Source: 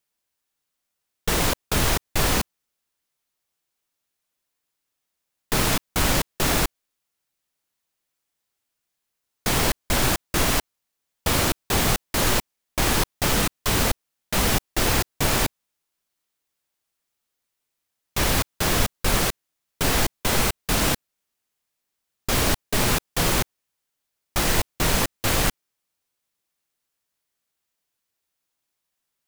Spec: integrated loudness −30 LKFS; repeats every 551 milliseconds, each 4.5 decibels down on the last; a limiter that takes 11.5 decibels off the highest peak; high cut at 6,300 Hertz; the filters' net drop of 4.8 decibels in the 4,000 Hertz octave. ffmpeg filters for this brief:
ffmpeg -i in.wav -af "lowpass=6300,equalizer=frequency=4000:width_type=o:gain=-5.5,alimiter=limit=-20dB:level=0:latency=1,aecho=1:1:551|1102|1653|2204|2755|3306|3857|4408|4959:0.596|0.357|0.214|0.129|0.0772|0.0463|0.0278|0.0167|0.01,volume=2dB" out.wav

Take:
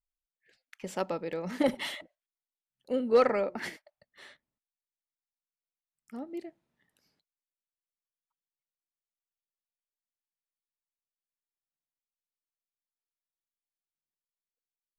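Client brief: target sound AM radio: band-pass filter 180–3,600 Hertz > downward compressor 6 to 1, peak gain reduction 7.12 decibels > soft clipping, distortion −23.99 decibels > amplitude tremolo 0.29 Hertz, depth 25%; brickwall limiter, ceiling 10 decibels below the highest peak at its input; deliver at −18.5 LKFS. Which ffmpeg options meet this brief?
ffmpeg -i in.wav -af "alimiter=limit=-24dB:level=0:latency=1,highpass=180,lowpass=3600,acompressor=threshold=-34dB:ratio=6,asoftclip=threshold=-27.5dB,tremolo=f=0.29:d=0.25,volume=24dB" out.wav

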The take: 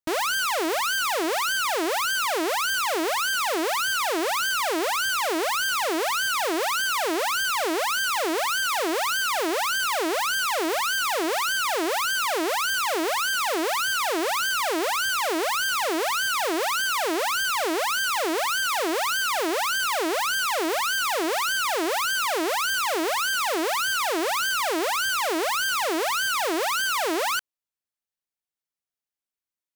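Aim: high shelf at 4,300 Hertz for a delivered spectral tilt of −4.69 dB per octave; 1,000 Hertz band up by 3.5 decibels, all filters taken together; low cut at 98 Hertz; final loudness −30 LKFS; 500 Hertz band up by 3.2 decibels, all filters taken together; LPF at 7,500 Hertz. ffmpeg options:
ffmpeg -i in.wav -af "highpass=98,lowpass=7500,equalizer=frequency=500:width_type=o:gain=3,equalizer=frequency=1000:width_type=o:gain=4,highshelf=frequency=4300:gain=-4,volume=-7.5dB" out.wav

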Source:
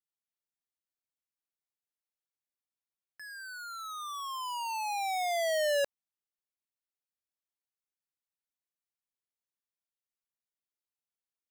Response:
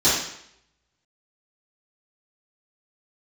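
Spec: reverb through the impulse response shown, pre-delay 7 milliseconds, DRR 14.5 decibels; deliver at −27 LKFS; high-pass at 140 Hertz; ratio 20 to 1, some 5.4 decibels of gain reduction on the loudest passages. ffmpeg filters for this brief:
-filter_complex "[0:a]highpass=140,acompressor=threshold=-32dB:ratio=20,asplit=2[link_01][link_02];[1:a]atrim=start_sample=2205,adelay=7[link_03];[link_02][link_03]afir=irnorm=-1:irlink=0,volume=-33dB[link_04];[link_01][link_04]amix=inputs=2:normalize=0,volume=9dB"

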